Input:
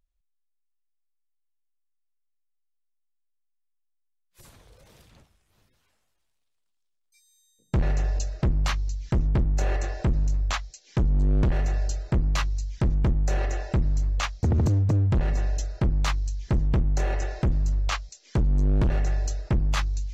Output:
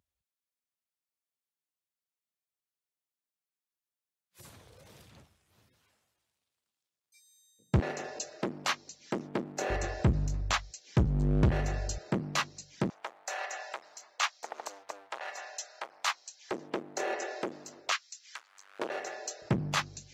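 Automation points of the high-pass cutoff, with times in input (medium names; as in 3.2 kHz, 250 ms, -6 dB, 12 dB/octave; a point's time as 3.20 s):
high-pass 24 dB/octave
74 Hz
from 7.80 s 240 Hz
from 9.70 s 65 Hz
from 11.98 s 170 Hz
from 12.90 s 710 Hz
from 16.51 s 320 Hz
from 17.92 s 1.3 kHz
from 18.79 s 400 Hz
from 19.42 s 130 Hz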